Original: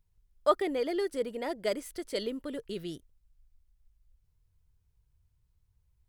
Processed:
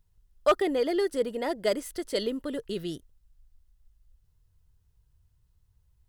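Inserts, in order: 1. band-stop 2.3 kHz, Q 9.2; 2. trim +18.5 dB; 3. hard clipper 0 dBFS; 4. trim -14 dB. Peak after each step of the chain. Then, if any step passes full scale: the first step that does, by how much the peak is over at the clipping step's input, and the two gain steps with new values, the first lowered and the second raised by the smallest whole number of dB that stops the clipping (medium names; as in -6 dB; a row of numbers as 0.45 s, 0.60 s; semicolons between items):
-12.0 dBFS, +6.5 dBFS, 0.0 dBFS, -14.0 dBFS; step 2, 6.5 dB; step 2 +11.5 dB, step 4 -7 dB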